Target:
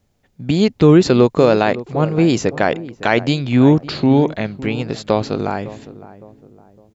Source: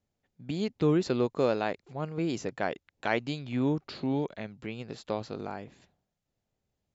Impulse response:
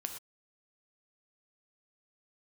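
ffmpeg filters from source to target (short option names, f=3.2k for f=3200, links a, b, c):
-filter_complex "[0:a]lowshelf=f=86:g=5.5,asplit=2[a][b];[b]adelay=559,lowpass=f=1k:p=1,volume=-16dB,asplit=2[c][d];[d]adelay=559,lowpass=f=1k:p=1,volume=0.43,asplit=2[e][f];[f]adelay=559,lowpass=f=1k:p=1,volume=0.43,asplit=2[g][h];[h]adelay=559,lowpass=f=1k:p=1,volume=0.43[i];[a][c][e][g][i]amix=inputs=5:normalize=0,alimiter=level_in=17dB:limit=-1dB:release=50:level=0:latency=1,volume=-1dB"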